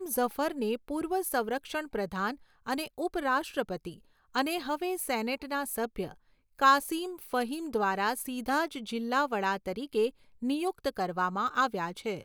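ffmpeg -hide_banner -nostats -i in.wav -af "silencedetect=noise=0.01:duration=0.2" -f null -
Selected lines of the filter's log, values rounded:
silence_start: 2.34
silence_end: 2.66 | silence_duration: 0.32
silence_start: 3.94
silence_end: 4.35 | silence_duration: 0.41
silence_start: 6.12
silence_end: 6.59 | silence_duration: 0.47
silence_start: 10.09
silence_end: 10.42 | silence_duration: 0.33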